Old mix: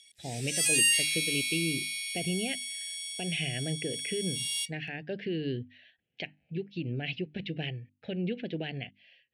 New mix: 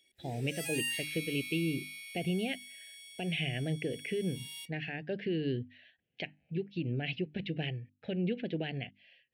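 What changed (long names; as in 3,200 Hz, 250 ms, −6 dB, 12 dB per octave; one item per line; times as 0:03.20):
background: remove meter weighting curve ITU-R 468
master: add high-shelf EQ 4,300 Hz −7 dB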